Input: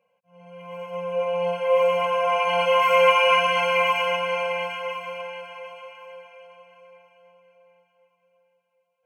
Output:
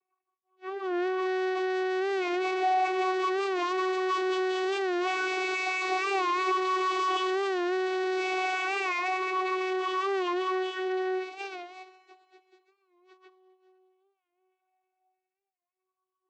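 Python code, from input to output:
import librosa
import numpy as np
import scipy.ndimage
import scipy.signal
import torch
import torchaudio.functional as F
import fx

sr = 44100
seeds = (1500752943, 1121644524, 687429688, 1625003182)

y = fx.spec_ripple(x, sr, per_octave=1.2, drift_hz=-0.58, depth_db=21)
y = fx.high_shelf(y, sr, hz=3500.0, db=-2.5)
y = fx.leveller(y, sr, passes=5)
y = fx.stretch_vocoder_free(y, sr, factor=1.8)
y = fx.rotary_switch(y, sr, hz=5.5, then_hz=0.65, switch_at_s=4.07)
y = np.clip(y, -10.0 ** (-25.5 / 20.0), 10.0 ** (-25.5 / 20.0))
y = fx.vocoder(y, sr, bands=16, carrier='saw', carrier_hz=373.0)
y = fx.air_absorb(y, sr, metres=68.0)
y = fx.echo_thinned(y, sr, ms=253, feedback_pct=57, hz=260.0, wet_db=-22.0)
y = fx.record_warp(y, sr, rpm=45.0, depth_cents=100.0)
y = F.gain(torch.from_numpy(y), -1.5).numpy()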